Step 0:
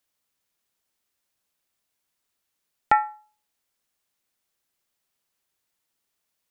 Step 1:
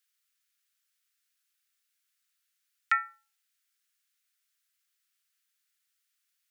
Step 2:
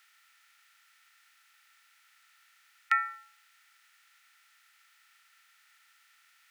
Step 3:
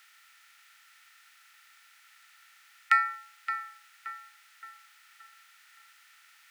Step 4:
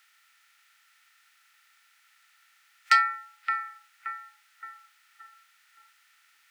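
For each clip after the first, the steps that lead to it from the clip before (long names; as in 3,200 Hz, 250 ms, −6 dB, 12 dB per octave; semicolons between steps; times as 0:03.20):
Butterworth high-pass 1,300 Hz 48 dB per octave
compressor on every frequency bin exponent 0.6; level −1 dB
in parallel at −10.5 dB: soft clipping −30 dBFS, distortion −6 dB; on the sum: tape delay 572 ms, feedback 50%, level −8 dB, low-pass 2,300 Hz; level +3 dB
noise reduction from a noise print of the clip's start 9 dB; saturating transformer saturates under 2,600 Hz; level +4.5 dB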